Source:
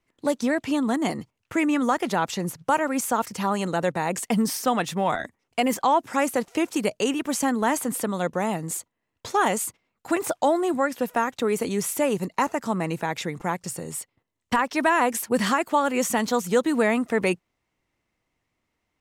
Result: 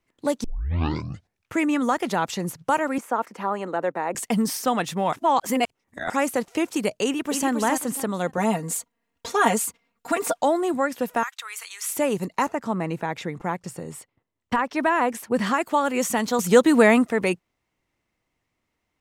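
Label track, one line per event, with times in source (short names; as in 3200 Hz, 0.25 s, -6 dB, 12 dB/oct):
0.440000	0.440000	tape start 1.09 s
2.980000	4.150000	three-band isolator lows -24 dB, under 230 Hz, highs -16 dB, over 2200 Hz
5.130000	6.100000	reverse
7.040000	7.500000	echo throw 0.27 s, feedback 30%, level -6 dB
8.370000	10.420000	comb 4.3 ms, depth 88%
11.230000	11.890000	HPF 1200 Hz 24 dB/oct
12.480000	15.540000	high shelf 3800 Hz -10 dB
16.390000	17.050000	gain +6 dB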